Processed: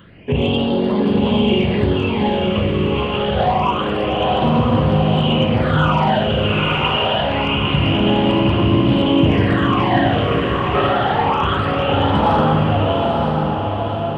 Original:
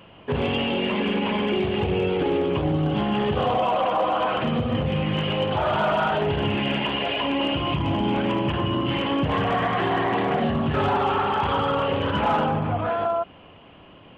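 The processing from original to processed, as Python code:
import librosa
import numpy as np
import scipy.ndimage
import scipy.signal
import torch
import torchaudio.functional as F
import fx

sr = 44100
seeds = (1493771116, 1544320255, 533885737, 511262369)

p1 = fx.phaser_stages(x, sr, stages=8, low_hz=220.0, high_hz=2400.0, hz=0.26, feedback_pct=35)
p2 = p1 + fx.echo_diffused(p1, sr, ms=937, feedback_pct=44, wet_db=-3, dry=0)
y = F.gain(torch.from_numpy(p2), 7.0).numpy()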